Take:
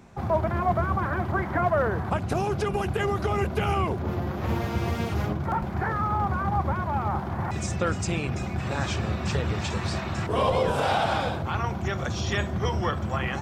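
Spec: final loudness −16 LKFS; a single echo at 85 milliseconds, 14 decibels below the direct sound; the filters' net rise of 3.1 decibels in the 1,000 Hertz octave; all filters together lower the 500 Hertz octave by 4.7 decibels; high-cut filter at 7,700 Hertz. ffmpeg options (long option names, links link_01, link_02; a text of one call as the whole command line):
ffmpeg -i in.wav -af "lowpass=7700,equalizer=frequency=500:width_type=o:gain=-9,equalizer=frequency=1000:width_type=o:gain=7,aecho=1:1:85:0.2,volume=10.5dB" out.wav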